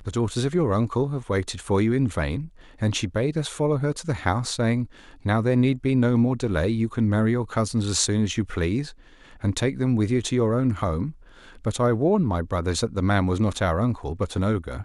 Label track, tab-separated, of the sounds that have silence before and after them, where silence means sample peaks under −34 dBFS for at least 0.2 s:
2.810000	4.850000	sound
5.250000	8.900000	sound
9.440000	11.110000	sound